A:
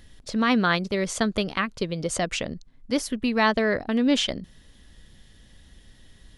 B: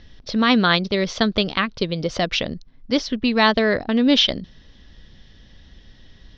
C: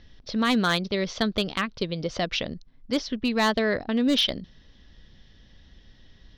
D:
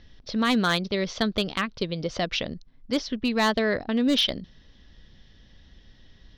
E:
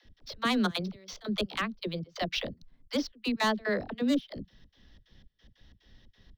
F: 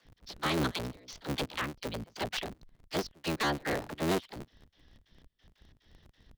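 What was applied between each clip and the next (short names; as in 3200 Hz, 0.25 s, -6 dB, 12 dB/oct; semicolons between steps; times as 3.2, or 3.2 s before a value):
Chebyshev low-pass 5700 Hz, order 5; dynamic EQ 3700 Hz, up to +7 dB, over -46 dBFS, Q 2.2; gain +4.5 dB
overloaded stage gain 10 dB; gain -5.5 dB
nothing audible
median filter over 3 samples; step gate "x.xx.xxx.xx.." 181 bpm -24 dB; dispersion lows, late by 54 ms, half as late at 370 Hz; gain -4 dB
cycle switcher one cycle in 3, inverted; gain -3 dB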